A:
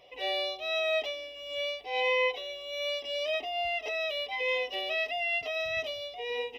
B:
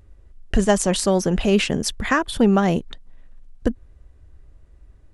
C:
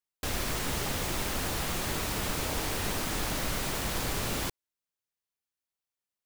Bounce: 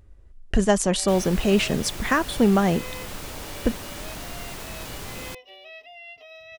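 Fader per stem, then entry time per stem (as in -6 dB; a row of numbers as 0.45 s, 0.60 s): -12.5 dB, -2.0 dB, -4.5 dB; 0.75 s, 0.00 s, 0.85 s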